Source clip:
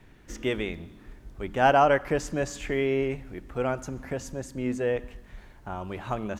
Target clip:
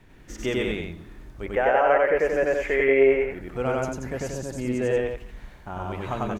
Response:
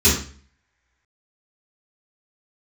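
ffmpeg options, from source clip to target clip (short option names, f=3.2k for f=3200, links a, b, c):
-filter_complex "[0:a]asettb=1/sr,asplit=3[a][b][c];[a]atrim=end=1.464[d];[b]atrim=start=1.46:end=3.31,asetpts=PTS-STARTPTS,afade=t=in:d=0.004:c=qsin,afade=t=out:st=1.846:d=0.004:c=qsin,equalizer=f=125:t=o:w=1:g=-11,equalizer=f=250:t=o:w=1:g=-5,equalizer=f=500:t=o:w=1:g=11,equalizer=f=2k:t=o:w=1:g=12,equalizer=f=4k:t=o:w=1:g=-10,equalizer=f=8k:t=o:w=1:g=-11[e];[c]atrim=start=3.306[f];[d][e]acrossfade=d=0.004:c1=hsin:c2=qsin[g];[g][f]acrossfade=d=0.004:c1=qsin:c2=hsin,alimiter=limit=-13dB:level=0:latency=1:release=380,aecho=1:1:96.21|180.8:1|0.562"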